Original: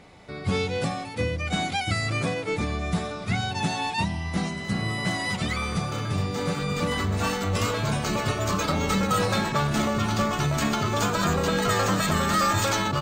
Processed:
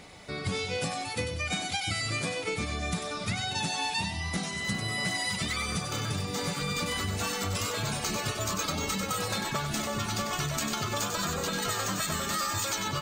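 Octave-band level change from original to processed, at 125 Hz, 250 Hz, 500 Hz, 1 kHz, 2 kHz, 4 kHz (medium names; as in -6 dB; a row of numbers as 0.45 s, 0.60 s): -8.0 dB, -8.5 dB, -7.5 dB, -6.5 dB, -3.5 dB, -1.0 dB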